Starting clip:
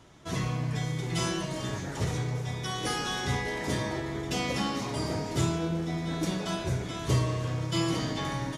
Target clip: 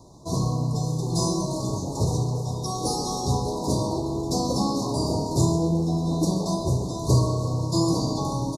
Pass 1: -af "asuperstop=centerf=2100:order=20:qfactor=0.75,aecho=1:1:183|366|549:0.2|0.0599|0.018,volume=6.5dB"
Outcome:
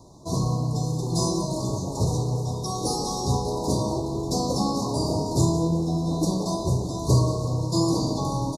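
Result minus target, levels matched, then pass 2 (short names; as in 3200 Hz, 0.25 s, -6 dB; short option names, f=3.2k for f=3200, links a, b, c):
echo 50 ms late
-af "asuperstop=centerf=2100:order=20:qfactor=0.75,aecho=1:1:133|266|399:0.2|0.0599|0.018,volume=6.5dB"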